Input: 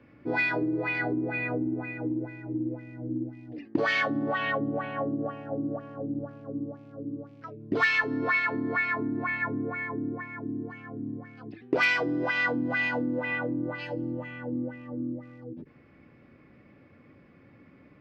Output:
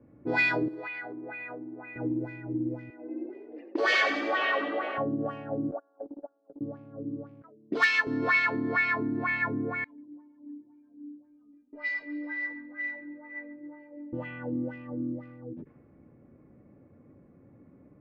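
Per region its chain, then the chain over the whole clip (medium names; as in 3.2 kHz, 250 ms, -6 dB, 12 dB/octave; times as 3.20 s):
0.68–1.96 s: high-pass 1.1 kHz 6 dB/octave + compression, threshold -35 dBFS
2.90–4.98 s: high-pass 330 Hz 24 dB/octave + frequency-shifting echo 92 ms, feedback 59%, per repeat +38 Hz, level -8 dB
5.71–6.61 s: elliptic band-pass 320–1400 Hz + gate -38 dBFS, range -21 dB + comb 1.3 ms, depth 41%
7.42–8.07 s: high-pass 180 Hz 24 dB/octave + upward expansion, over -42 dBFS
9.84–14.13 s: flange 1.7 Hz, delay 3.5 ms, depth 2.5 ms, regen -6% + inharmonic resonator 290 Hz, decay 0.36 s, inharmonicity 0.008 + feedback delay 139 ms, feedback 54%, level -12.5 dB
whole clip: level-controlled noise filter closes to 600 Hz, open at -27 dBFS; treble shelf 4.4 kHz +9.5 dB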